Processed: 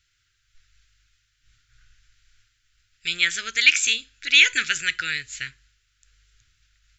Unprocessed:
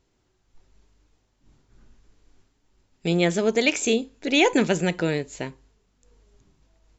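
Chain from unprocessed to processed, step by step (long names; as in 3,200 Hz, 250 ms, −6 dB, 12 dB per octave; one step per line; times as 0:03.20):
drawn EQ curve 120 Hz 0 dB, 180 Hz −23 dB, 290 Hz −19 dB, 620 Hz −25 dB, 910 Hz −28 dB, 1,400 Hz +11 dB, 3,500 Hz +12 dB, 10,000 Hz +7 dB
level −3.5 dB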